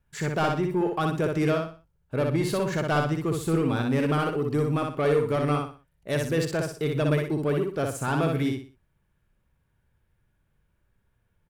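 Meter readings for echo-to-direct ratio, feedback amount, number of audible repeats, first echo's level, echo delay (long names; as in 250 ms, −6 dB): −3.0 dB, 32%, 4, −3.5 dB, 61 ms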